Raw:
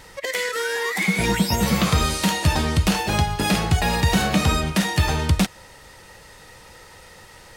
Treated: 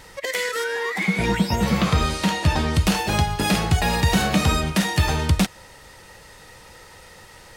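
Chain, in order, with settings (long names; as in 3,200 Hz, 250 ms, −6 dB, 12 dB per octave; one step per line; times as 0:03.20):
0:00.63–0:02.73: high-shelf EQ 4,600 Hz → 7,800 Hz −11.5 dB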